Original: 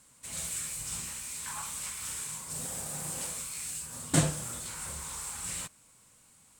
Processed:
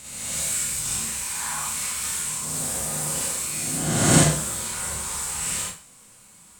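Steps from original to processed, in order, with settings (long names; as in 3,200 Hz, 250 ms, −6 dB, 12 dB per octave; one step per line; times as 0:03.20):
peak hold with a rise ahead of every peak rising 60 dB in 1.40 s
four-comb reverb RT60 0.37 s, combs from 31 ms, DRR −2 dB
level +3 dB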